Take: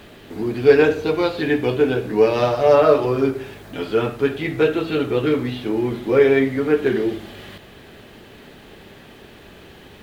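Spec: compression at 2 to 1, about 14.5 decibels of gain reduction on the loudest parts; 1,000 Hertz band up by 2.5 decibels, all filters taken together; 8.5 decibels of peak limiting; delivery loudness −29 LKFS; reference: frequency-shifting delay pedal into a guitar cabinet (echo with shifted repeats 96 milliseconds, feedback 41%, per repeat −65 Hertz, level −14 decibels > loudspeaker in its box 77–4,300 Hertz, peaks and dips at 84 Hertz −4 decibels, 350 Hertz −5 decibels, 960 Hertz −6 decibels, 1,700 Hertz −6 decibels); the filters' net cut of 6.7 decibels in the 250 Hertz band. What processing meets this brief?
parametric band 250 Hz −6.5 dB
parametric band 1,000 Hz +7.5 dB
downward compressor 2 to 1, threshold −35 dBFS
brickwall limiter −23.5 dBFS
echo with shifted repeats 96 ms, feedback 41%, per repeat −65 Hz, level −14 dB
loudspeaker in its box 77–4,300 Hz, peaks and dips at 84 Hz −4 dB, 350 Hz −5 dB, 960 Hz −6 dB, 1,700 Hz −6 dB
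level +7.5 dB

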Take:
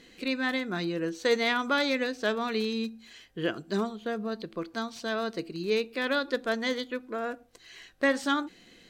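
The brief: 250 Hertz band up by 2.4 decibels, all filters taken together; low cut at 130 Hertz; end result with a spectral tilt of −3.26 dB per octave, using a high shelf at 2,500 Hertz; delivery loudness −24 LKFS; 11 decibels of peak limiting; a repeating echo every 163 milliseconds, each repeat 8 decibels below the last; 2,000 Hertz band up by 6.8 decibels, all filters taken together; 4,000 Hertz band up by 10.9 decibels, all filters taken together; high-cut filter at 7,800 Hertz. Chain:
high-pass filter 130 Hz
low-pass filter 7,800 Hz
parametric band 250 Hz +3 dB
parametric band 2,000 Hz +4 dB
high-shelf EQ 2,500 Hz +7 dB
parametric band 4,000 Hz +6 dB
brickwall limiter −17 dBFS
repeating echo 163 ms, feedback 40%, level −8 dB
level +4 dB

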